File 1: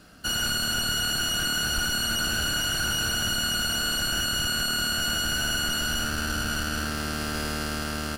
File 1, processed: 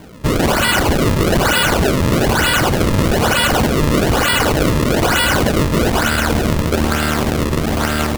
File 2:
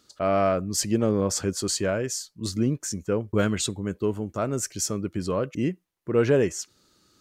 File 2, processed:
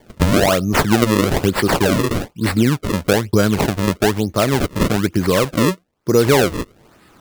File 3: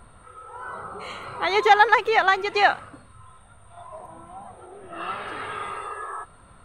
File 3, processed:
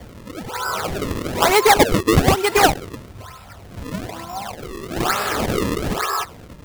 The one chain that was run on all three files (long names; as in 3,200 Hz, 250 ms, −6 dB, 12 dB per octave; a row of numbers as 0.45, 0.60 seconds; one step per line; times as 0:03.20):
high-pass filter 43 Hz 24 dB per octave
downward compressor 2.5 to 1, threshold −25 dBFS
sample-and-hold swept by an LFO 33×, swing 160% 1.1 Hz
normalise the peak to −2 dBFS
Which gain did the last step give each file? +14.0, +13.0, +11.5 decibels